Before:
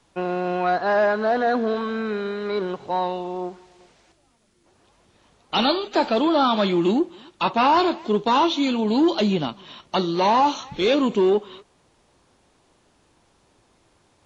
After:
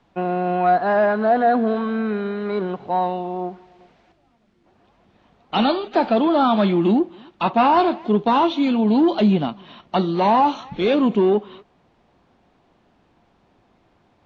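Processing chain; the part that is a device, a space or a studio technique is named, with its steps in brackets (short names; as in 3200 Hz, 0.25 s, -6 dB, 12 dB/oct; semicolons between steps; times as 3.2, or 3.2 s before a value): inside a cardboard box (LPF 3100 Hz 12 dB/oct; small resonant body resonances 200/710 Hz, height 6 dB, ringing for 25 ms)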